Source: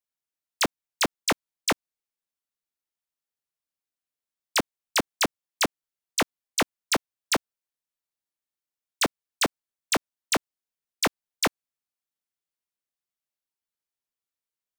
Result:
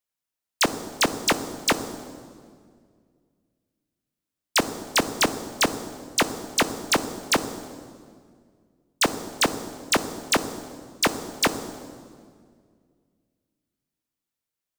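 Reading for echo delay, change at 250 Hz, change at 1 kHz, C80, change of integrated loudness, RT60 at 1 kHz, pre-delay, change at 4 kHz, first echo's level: none, +4.5 dB, +3.5 dB, 12.5 dB, +3.0 dB, 1.8 s, 22 ms, +3.0 dB, none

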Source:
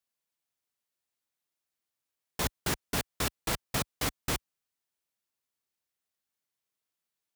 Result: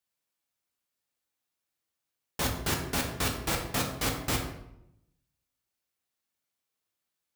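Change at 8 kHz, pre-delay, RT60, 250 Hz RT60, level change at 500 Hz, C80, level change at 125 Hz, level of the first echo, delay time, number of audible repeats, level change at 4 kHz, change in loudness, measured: +1.5 dB, 6 ms, 0.80 s, 1.0 s, +2.5 dB, 8.5 dB, +3.5 dB, none, none, none, +2.0 dB, +2.0 dB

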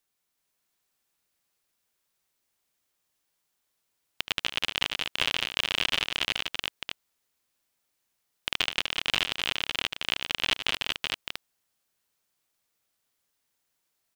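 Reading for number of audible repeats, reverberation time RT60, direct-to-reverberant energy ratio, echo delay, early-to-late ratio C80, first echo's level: 4, none, none, 75 ms, none, -12.5 dB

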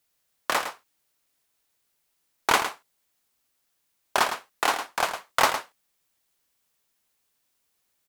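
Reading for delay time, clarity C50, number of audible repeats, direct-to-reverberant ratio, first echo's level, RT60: 0.108 s, none, 1, none, -9.5 dB, none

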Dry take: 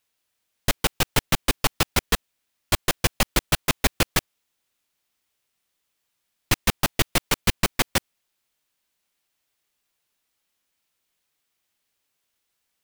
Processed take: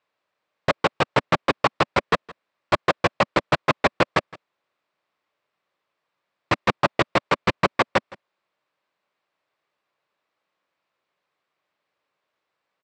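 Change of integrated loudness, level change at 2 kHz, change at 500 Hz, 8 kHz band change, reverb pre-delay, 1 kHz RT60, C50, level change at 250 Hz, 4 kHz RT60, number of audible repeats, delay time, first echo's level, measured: +1.0 dB, +2.5 dB, +7.5 dB, -16.5 dB, none, none, none, +1.5 dB, none, 1, 0.165 s, -21.5 dB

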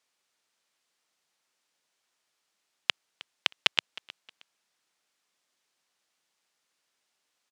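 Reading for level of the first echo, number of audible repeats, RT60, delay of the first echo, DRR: -20.0 dB, 2, none, 0.313 s, none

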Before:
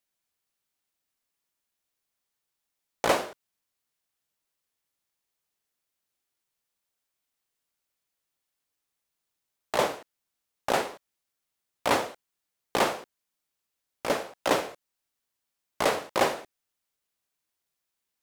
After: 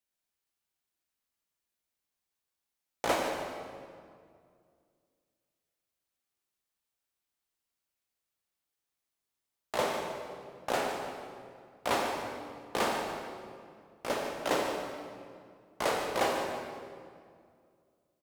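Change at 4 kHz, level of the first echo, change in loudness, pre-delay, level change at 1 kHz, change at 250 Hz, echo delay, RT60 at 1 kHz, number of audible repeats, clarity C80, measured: -4.0 dB, -10.5 dB, -5.5 dB, 6 ms, -3.5 dB, -3.0 dB, 0.147 s, 2.0 s, 1, 3.0 dB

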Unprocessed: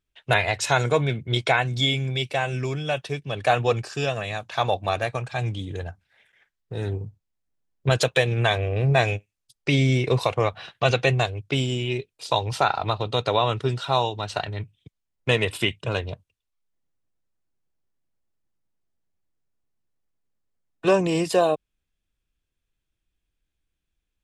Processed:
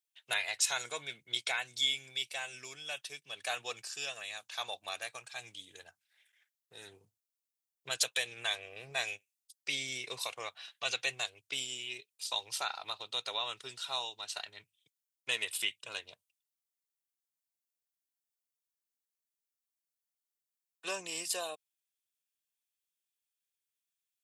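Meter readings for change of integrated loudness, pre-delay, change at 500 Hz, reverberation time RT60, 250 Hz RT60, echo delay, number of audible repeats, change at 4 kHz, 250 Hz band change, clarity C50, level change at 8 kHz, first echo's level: -12.0 dB, none, -22.5 dB, none, none, none, none, -6.0 dB, -28.5 dB, none, 0.0 dB, none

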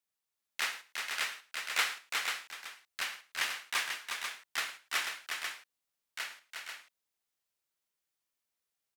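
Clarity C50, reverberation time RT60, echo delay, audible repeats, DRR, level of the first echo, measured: none, none, 0.11 s, 3, none, -17.5 dB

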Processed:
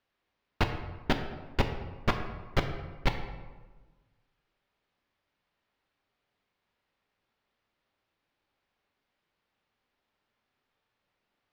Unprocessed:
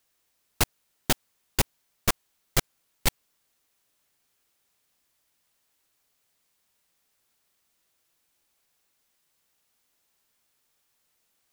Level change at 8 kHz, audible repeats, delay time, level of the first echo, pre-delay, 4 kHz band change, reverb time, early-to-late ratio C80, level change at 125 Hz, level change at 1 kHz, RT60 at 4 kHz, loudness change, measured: -23.0 dB, none, none, none, 3 ms, -7.0 dB, 1.3 s, 9.0 dB, +1.0 dB, 0.0 dB, 0.80 s, -4.5 dB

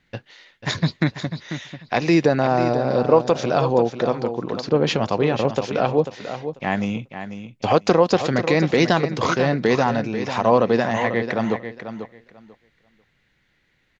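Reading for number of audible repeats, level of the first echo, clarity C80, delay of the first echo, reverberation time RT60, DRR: 2, -10.0 dB, none, 0.492 s, none, none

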